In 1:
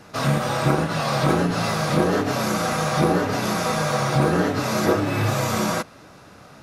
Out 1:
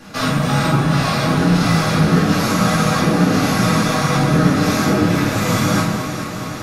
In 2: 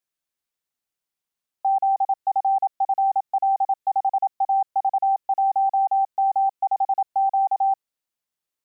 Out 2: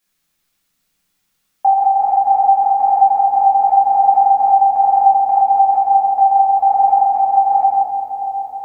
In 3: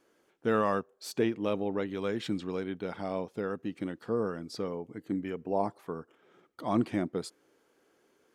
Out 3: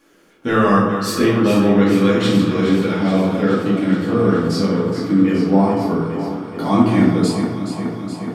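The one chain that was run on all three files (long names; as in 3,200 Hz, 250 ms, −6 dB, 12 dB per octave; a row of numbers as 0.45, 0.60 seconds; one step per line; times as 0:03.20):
parametric band 590 Hz −6.5 dB 1.5 octaves
downward compressor 3 to 1, threshold −27 dBFS
delay that swaps between a low-pass and a high-pass 211 ms, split 1,200 Hz, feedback 84%, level −7.5 dB
rectangular room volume 260 cubic metres, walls mixed, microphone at 2.3 metres
normalise the peak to −1.5 dBFS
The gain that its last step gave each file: +3.5, +12.5, +10.5 decibels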